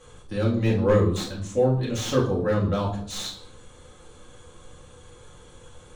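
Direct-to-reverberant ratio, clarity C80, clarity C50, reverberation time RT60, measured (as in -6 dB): -5.0 dB, 11.5 dB, 7.0 dB, 0.60 s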